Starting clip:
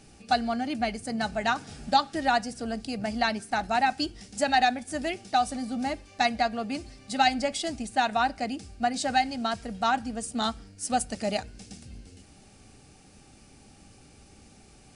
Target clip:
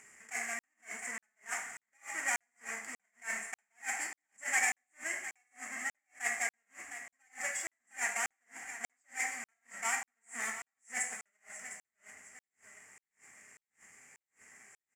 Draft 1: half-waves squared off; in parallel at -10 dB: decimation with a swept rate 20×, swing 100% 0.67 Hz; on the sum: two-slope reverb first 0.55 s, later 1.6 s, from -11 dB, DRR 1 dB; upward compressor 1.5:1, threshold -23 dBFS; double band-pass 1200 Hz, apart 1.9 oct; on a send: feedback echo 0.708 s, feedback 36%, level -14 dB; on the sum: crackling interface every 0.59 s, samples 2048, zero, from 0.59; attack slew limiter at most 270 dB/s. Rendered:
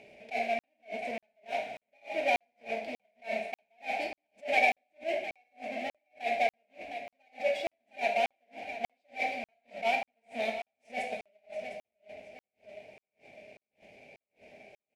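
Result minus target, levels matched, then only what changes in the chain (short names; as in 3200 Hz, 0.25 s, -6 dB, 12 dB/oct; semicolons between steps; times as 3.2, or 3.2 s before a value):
1000 Hz band +6.5 dB
change: double band-pass 3800 Hz, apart 1.9 oct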